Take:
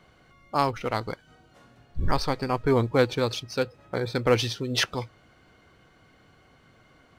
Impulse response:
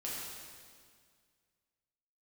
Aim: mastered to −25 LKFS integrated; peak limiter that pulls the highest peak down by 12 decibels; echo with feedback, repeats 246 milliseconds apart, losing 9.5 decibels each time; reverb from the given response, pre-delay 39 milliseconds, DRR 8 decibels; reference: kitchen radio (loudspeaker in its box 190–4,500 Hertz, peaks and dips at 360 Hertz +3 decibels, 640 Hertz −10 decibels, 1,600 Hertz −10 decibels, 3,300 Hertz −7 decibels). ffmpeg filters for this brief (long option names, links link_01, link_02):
-filter_complex "[0:a]alimiter=limit=-20dB:level=0:latency=1,aecho=1:1:246|492|738|984:0.335|0.111|0.0365|0.012,asplit=2[link_01][link_02];[1:a]atrim=start_sample=2205,adelay=39[link_03];[link_02][link_03]afir=irnorm=-1:irlink=0,volume=-10dB[link_04];[link_01][link_04]amix=inputs=2:normalize=0,highpass=190,equalizer=frequency=360:width_type=q:width=4:gain=3,equalizer=frequency=640:width_type=q:width=4:gain=-10,equalizer=frequency=1600:width_type=q:width=4:gain=-10,equalizer=frequency=3300:width_type=q:width=4:gain=-7,lowpass=frequency=4500:width=0.5412,lowpass=frequency=4500:width=1.3066,volume=9dB"